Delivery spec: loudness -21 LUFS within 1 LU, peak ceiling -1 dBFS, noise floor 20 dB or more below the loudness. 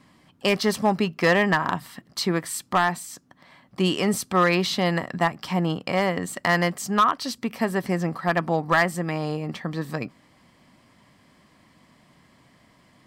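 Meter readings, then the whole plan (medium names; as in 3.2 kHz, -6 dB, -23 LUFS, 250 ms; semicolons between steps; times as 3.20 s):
clipped samples 0.4%; clipping level -12.0 dBFS; loudness -24.0 LUFS; peak level -12.0 dBFS; loudness target -21.0 LUFS
-> clip repair -12 dBFS; trim +3 dB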